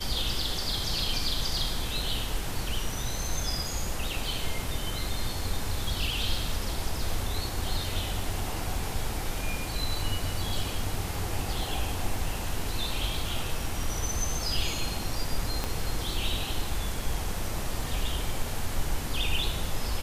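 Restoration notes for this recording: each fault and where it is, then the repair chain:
15.64 s: pop -14 dBFS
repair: de-click

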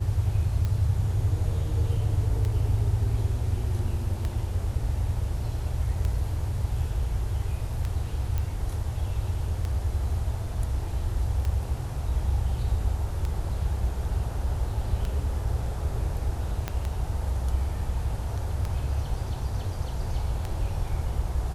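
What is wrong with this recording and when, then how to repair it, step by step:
tick 33 1/3 rpm -18 dBFS
8.38 s: pop
16.68 s: pop -14 dBFS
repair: de-click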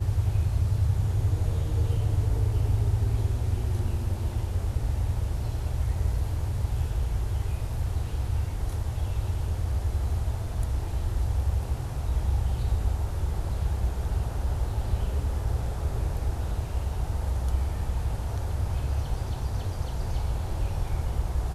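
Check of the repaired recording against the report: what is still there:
16.68 s: pop

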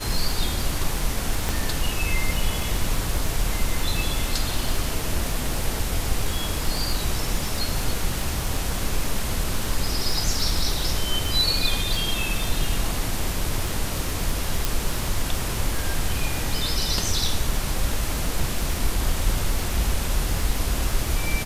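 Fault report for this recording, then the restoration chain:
crackle 40 per s -26 dBFS
1.49 s: pop
14.65 s: pop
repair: de-click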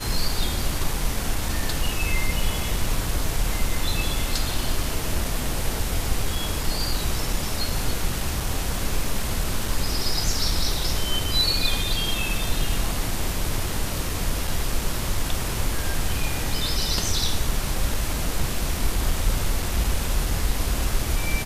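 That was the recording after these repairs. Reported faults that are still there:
14.65 s: pop

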